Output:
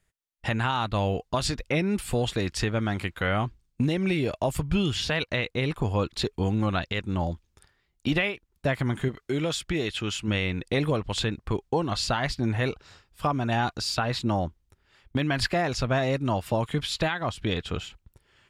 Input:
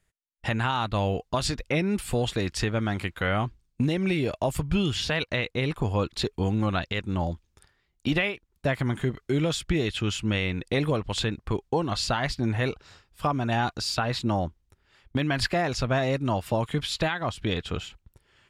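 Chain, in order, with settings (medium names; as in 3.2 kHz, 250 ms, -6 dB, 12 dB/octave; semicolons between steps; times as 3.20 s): 9.08–10.28 s: bass shelf 210 Hz -7 dB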